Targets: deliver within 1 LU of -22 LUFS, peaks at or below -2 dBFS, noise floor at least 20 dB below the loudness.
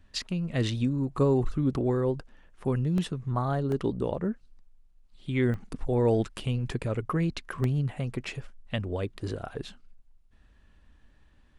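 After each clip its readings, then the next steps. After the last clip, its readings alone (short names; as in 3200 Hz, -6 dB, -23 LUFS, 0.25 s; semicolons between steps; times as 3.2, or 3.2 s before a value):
dropouts 4; longest dropout 1.4 ms; loudness -29.5 LUFS; peak -13.5 dBFS; loudness target -22.0 LUFS
-> interpolate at 2.98/3.72/5.54/7.64, 1.4 ms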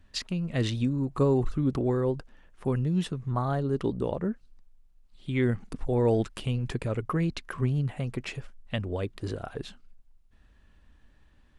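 dropouts 0; loudness -29.5 LUFS; peak -13.5 dBFS; loudness target -22.0 LUFS
-> gain +7.5 dB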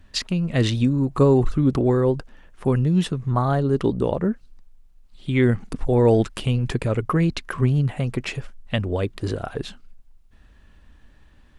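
loudness -22.0 LUFS; peak -6.0 dBFS; noise floor -53 dBFS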